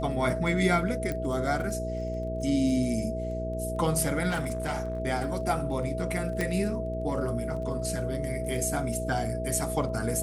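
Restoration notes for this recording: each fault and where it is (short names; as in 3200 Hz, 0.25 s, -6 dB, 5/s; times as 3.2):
crackle 17/s -38 dBFS
hum 60 Hz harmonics 8 -34 dBFS
tone 650 Hz -33 dBFS
1.12 pop -19 dBFS
4.29–5 clipped -25.5 dBFS
6.41 pop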